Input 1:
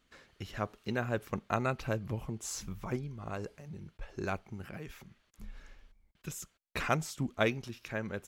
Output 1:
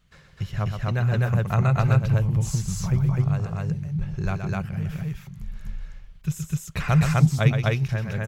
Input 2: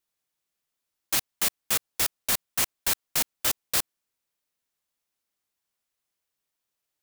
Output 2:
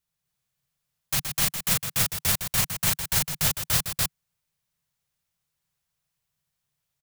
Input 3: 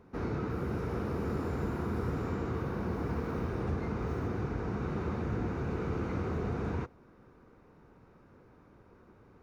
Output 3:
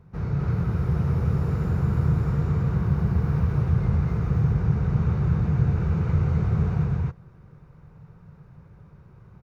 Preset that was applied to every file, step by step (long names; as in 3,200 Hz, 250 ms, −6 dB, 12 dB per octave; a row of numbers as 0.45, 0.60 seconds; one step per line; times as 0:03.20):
low shelf with overshoot 200 Hz +9 dB, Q 3
loudspeakers that aren't time-aligned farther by 42 metres −7 dB, 87 metres 0 dB
loudness normalisation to −24 LKFS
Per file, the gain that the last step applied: +3.0, −1.0, −1.5 decibels